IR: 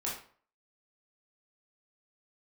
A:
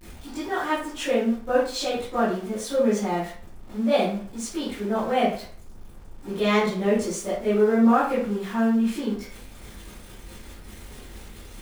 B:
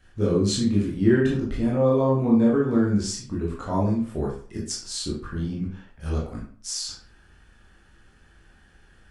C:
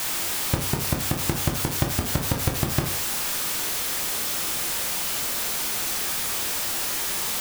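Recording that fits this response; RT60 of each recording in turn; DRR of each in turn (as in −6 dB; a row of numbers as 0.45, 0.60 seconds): B; 0.45, 0.45, 0.45 seconds; −13.0, −5.0, 3.0 decibels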